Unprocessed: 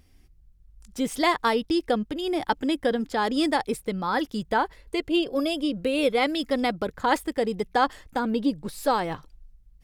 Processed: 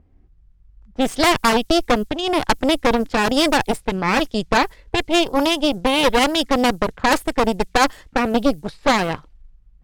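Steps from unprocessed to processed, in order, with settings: added noise violet -57 dBFS; level-controlled noise filter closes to 880 Hz, open at -22 dBFS; Chebyshev shaper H 8 -11 dB, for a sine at -8 dBFS; trim +4 dB

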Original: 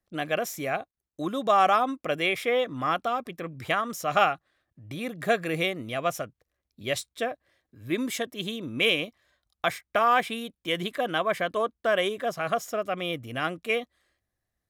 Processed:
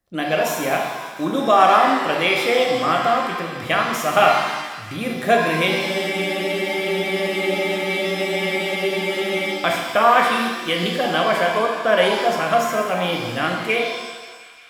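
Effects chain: feedback echo behind a high-pass 176 ms, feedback 82%, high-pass 1.5 kHz, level -18.5 dB; spectral freeze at 5.71 s, 3.79 s; pitch-shifted reverb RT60 1.2 s, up +7 st, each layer -8 dB, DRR 0 dB; trim +5 dB

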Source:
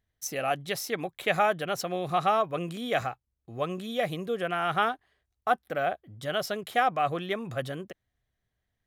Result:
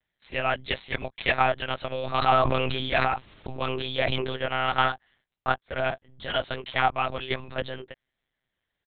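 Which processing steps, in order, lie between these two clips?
tilt EQ +2.5 dB/octave; comb 7.5 ms, depth 81%; monotone LPC vocoder at 8 kHz 130 Hz; 1.98–4.37 s: decay stretcher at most 24 dB/s

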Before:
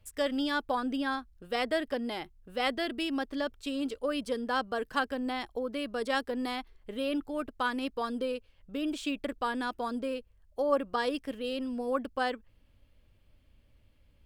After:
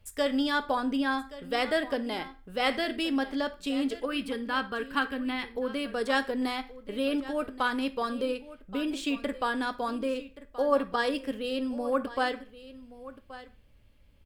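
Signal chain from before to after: 4.05–5.58 s: fifteen-band graphic EQ 630 Hz -12 dB, 2.5 kHz +4 dB, 6.3 kHz -12 dB; delay 1126 ms -16.5 dB; on a send at -8.5 dB: reverberation RT60 0.40 s, pre-delay 3 ms; on the sum: trim +2.5 dB

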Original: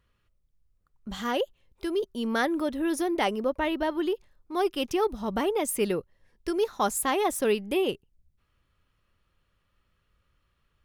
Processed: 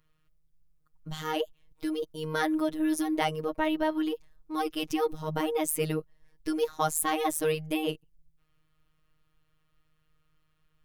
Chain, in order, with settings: treble shelf 12 kHz +7 dB; robot voice 156 Hz; bass shelf 170 Hz +5.5 dB

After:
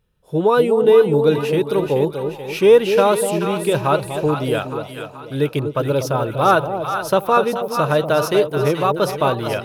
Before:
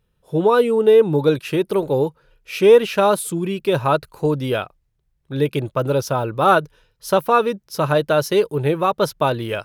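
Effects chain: two-band feedback delay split 820 Hz, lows 243 ms, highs 431 ms, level -7 dB

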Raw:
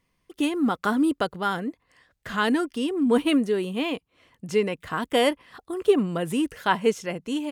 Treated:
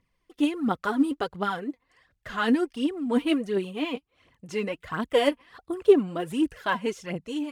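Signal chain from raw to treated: treble shelf 8.1 kHz -8.5 dB; phaser 1.4 Hz, delay 4.4 ms, feedback 59%; trim -4.5 dB

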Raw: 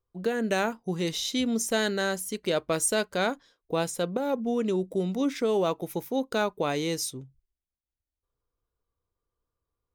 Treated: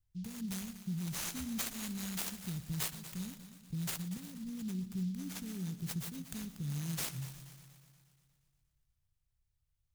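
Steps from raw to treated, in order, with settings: Chebyshev band-stop 140–7300 Hz, order 3; compression 12:1, threshold -40 dBFS, peak gain reduction 17.5 dB; multi-head delay 119 ms, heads first and second, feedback 58%, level -16 dB; delay time shaken by noise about 4.2 kHz, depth 0.031 ms; trim +6 dB

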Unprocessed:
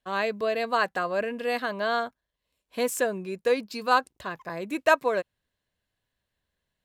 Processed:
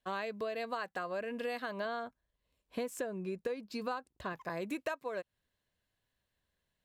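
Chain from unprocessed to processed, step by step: 1.85–4.33 s: tilt EQ -1.5 dB/octave; compression 12:1, threshold -32 dBFS, peak gain reduction 18.5 dB; trim -2 dB

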